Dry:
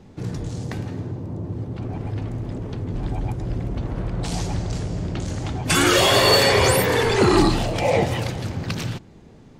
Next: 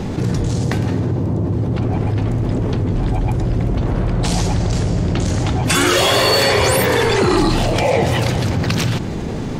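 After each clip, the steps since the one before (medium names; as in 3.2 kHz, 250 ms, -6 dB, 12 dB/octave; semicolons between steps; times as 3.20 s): level flattener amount 70%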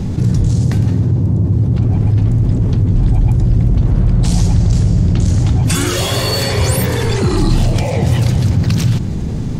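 tone controls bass +14 dB, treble +7 dB; trim -6.5 dB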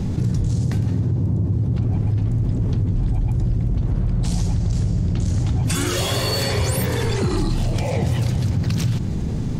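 compression, threshold -12 dBFS, peak gain reduction 6.5 dB; trim -4 dB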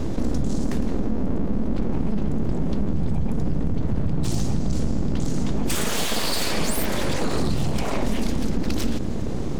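full-wave rectifier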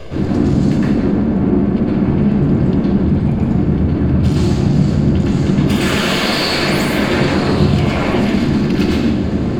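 reverberation RT60 0.85 s, pre-delay 109 ms, DRR -7 dB; trim -5 dB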